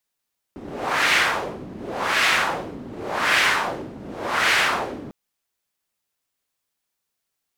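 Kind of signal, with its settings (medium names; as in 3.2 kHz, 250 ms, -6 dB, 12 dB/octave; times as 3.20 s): wind-like swept noise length 4.55 s, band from 240 Hz, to 2.1 kHz, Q 1.5, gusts 4, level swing 18.5 dB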